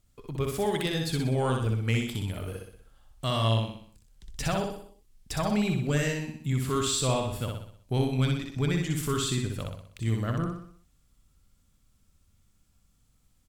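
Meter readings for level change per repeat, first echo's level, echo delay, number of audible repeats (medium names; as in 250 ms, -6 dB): -6.5 dB, -3.5 dB, 62 ms, 5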